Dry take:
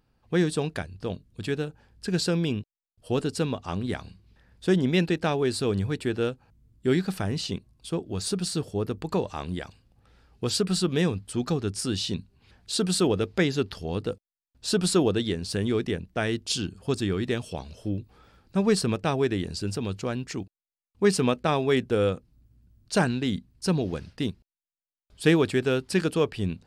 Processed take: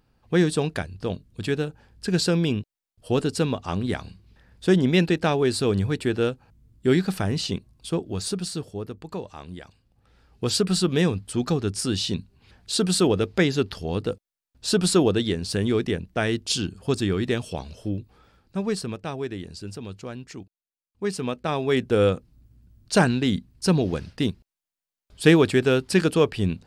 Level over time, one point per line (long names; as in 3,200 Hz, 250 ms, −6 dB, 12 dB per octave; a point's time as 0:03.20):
0:07.98 +3.5 dB
0:09.01 −6.5 dB
0:09.59 −6.5 dB
0:10.49 +3 dB
0:17.68 +3 dB
0:18.96 −6 dB
0:21.17 −6 dB
0:22.02 +4.5 dB